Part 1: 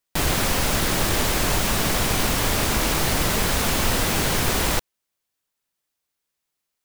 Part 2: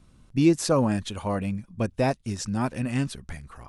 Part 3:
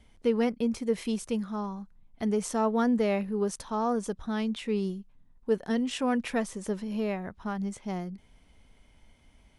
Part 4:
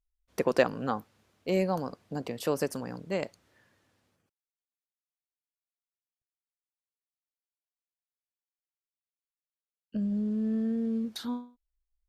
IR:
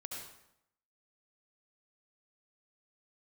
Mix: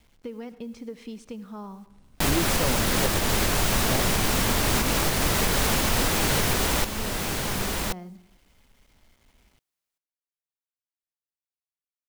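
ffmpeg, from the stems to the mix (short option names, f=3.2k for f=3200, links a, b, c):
-filter_complex "[0:a]adelay=2050,volume=2dB,asplit=2[a][b];[b]volume=-8.5dB[c];[1:a]adelay=1900,volume=-4.5dB[d];[2:a]lowpass=6.3k,acompressor=threshold=-31dB:ratio=6,acrusher=bits=9:mix=0:aa=0.000001,volume=-4.5dB,asplit=2[e][f];[f]volume=-9.5dB[g];[3:a]adelay=2450,volume=-7.5dB[h];[4:a]atrim=start_sample=2205[i];[g][i]afir=irnorm=-1:irlink=0[j];[c]aecho=0:1:1080:1[k];[a][d][e][h][j][k]amix=inputs=6:normalize=0,alimiter=limit=-12dB:level=0:latency=1:release=421"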